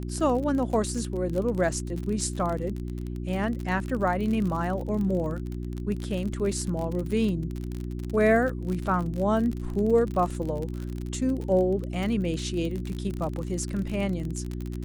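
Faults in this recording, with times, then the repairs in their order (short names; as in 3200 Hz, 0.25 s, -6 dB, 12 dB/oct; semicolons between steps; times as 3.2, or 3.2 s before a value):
crackle 45/s -30 dBFS
hum 60 Hz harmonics 6 -33 dBFS
10.3 gap 2.7 ms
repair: de-click; de-hum 60 Hz, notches 6; interpolate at 10.3, 2.7 ms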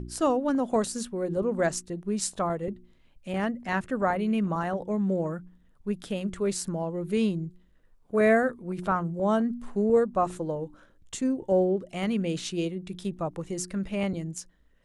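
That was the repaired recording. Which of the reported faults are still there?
none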